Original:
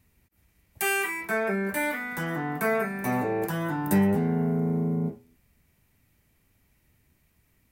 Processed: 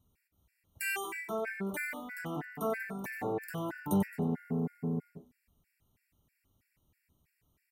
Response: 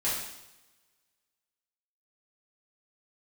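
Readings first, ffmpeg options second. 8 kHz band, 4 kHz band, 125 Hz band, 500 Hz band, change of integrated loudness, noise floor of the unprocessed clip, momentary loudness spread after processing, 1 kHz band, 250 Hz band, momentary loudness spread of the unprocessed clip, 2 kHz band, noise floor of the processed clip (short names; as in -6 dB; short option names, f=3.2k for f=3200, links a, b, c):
-9.0 dB, -9.0 dB, -9.0 dB, -9.0 dB, -8.5 dB, -68 dBFS, 7 LU, -9.0 dB, -8.5 dB, 7 LU, -9.0 dB, -80 dBFS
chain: -af "aecho=1:1:93:0.316,afftfilt=real='re*gt(sin(2*PI*3.1*pts/sr)*(1-2*mod(floor(b*sr/1024/1400),2)),0)':imag='im*gt(sin(2*PI*3.1*pts/sr)*(1-2*mod(floor(b*sr/1024/1400),2)),0)':win_size=1024:overlap=0.75,volume=-6dB"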